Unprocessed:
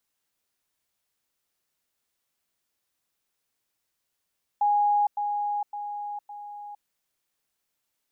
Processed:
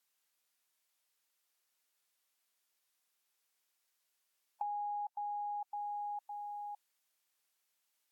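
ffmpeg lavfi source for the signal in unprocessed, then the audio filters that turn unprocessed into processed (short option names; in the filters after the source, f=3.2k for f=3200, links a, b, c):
-f lavfi -i "aevalsrc='pow(10,(-19-6*floor(t/0.56))/20)*sin(2*PI*825*t)*clip(min(mod(t,0.56),0.46-mod(t,0.56))/0.005,0,1)':d=2.24:s=44100"
-af "highpass=f=890:p=1,acompressor=threshold=-38dB:ratio=8" -ar 48000 -c:a libvorbis -b:a 96k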